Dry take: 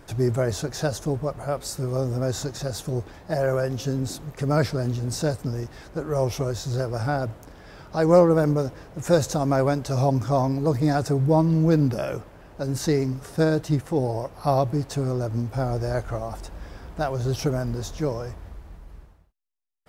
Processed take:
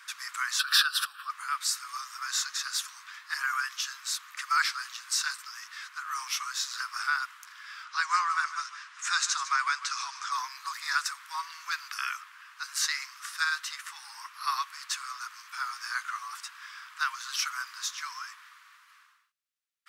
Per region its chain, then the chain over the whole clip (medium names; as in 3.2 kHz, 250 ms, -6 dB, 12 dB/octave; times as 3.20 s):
0.59–1.30 s: static phaser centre 1.4 kHz, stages 8 + swell ahead of each attack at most 27 dB/s
7.84–10.32 s: low-pass 8.6 kHz 24 dB/octave + delay 151 ms -13 dB
whole clip: steep high-pass 1.1 kHz 72 dB/octave; treble shelf 9.5 kHz -8.5 dB; trim +7 dB